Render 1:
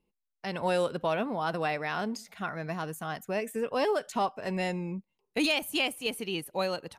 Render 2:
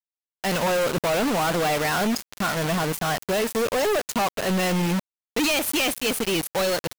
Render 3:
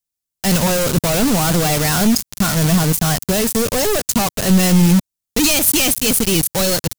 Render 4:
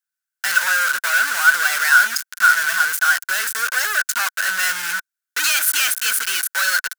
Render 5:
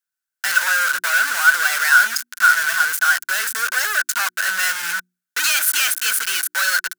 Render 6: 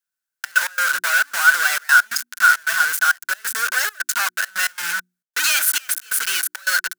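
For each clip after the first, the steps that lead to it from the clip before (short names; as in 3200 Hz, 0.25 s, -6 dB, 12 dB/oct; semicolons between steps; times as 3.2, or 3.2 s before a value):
companded quantiser 2-bit; gain +4 dB
tone controls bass +14 dB, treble +12 dB; gain +2 dB
resonant high-pass 1500 Hz, resonance Q 15; gain -4 dB
notches 60/120/180/240/300/360 Hz
step gate "xxxx.x.xxxx." 135 bpm -24 dB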